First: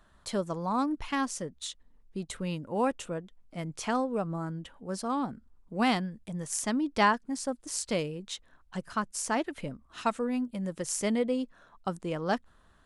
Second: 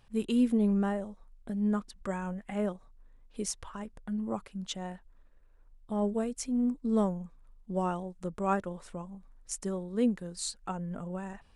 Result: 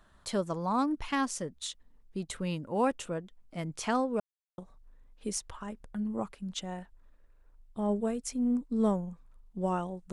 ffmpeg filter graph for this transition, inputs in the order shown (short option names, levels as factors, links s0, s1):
-filter_complex "[0:a]apad=whole_dur=10.12,atrim=end=10.12,asplit=2[s0][s1];[s0]atrim=end=4.2,asetpts=PTS-STARTPTS,afade=t=out:st=4.196:d=0.004:c=hsin[s2];[s1]atrim=start=4.2:end=4.58,asetpts=PTS-STARTPTS,volume=0[s3];[1:a]atrim=start=2.71:end=8.25,asetpts=PTS-STARTPTS,afade=t=in:d=0.004:c=hsin[s4];[s2][s3][s4]concat=n=3:v=0:a=1"